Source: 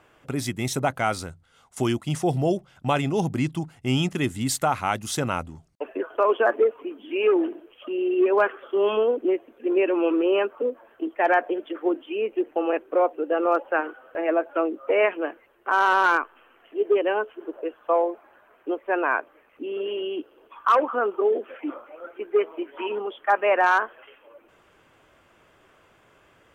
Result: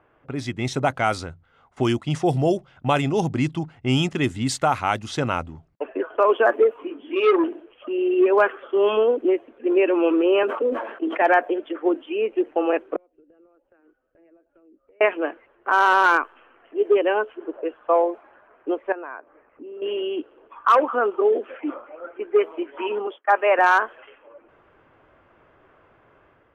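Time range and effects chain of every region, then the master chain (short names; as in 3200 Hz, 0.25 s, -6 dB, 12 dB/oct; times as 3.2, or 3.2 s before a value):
6.74–7.44 doubler 21 ms -4.5 dB + core saturation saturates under 820 Hz
10.43–11.22 HPF 200 Hz 24 dB/oct + sustainer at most 73 dB/s
12.96–15.01 compressor 12:1, threshold -30 dBFS + passive tone stack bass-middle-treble 10-0-1
18.92–19.82 LPF 2000 Hz + compressor 2:1, threshold -46 dBFS
23.07–23.59 expander -40 dBFS + HPF 300 Hz + high shelf 5800 Hz -6 dB
whole clip: bell 190 Hz -5 dB 0.26 oct; low-pass opened by the level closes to 1700 Hz, open at -17 dBFS; AGC gain up to 5 dB; gain -2 dB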